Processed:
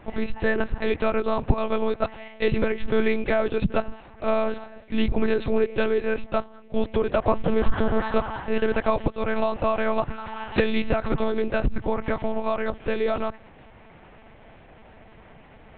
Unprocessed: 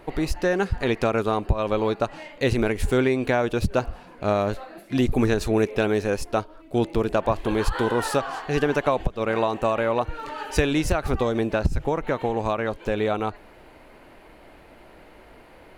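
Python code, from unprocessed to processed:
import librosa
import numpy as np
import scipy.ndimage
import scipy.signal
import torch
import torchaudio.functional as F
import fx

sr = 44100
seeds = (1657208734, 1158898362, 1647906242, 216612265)

y = fx.tilt_eq(x, sr, slope=-1.5, at=(7.24, 8.54))
y = fx.lpc_monotone(y, sr, seeds[0], pitch_hz=220.0, order=8)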